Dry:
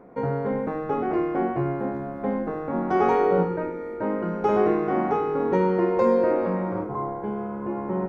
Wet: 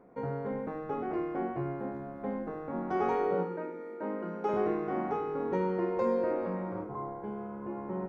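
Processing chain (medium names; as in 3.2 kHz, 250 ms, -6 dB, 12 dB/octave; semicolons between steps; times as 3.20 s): 3.34–4.54 s: high-pass 180 Hz 24 dB/octave; trim -9 dB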